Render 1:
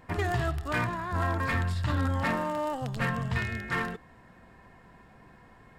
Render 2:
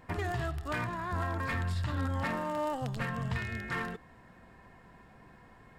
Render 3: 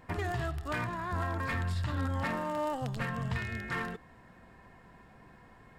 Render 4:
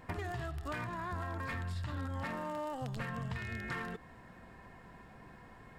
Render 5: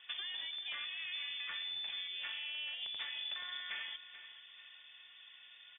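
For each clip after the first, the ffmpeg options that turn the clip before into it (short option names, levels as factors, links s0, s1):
-af "alimiter=limit=0.075:level=0:latency=1:release=232,volume=0.841"
-af anull
-af "acompressor=threshold=0.0126:ratio=5,volume=1.19"
-af "aecho=1:1:433|866|1299:0.224|0.0784|0.0274,lowpass=f=3100:t=q:w=0.5098,lowpass=f=3100:t=q:w=0.6013,lowpass=f=3100:t=q:w=0.9,lowpass=f=3100:t=q:w=2.563,afreqshift=-3600,volume=0.668"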